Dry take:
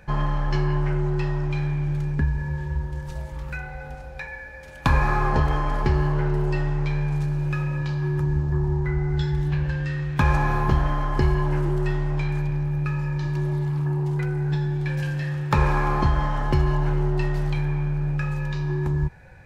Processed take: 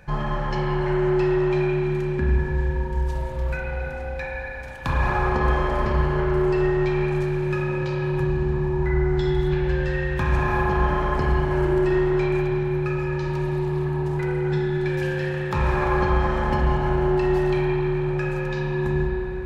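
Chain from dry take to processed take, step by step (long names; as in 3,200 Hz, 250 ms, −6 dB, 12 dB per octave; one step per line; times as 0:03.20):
brickwall limiter −15.5 dBFS, peak gain reduction 8 dB
spring reverb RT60 3.1 s, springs 32/46 ms, chirp 25 ms, DRR −3 dB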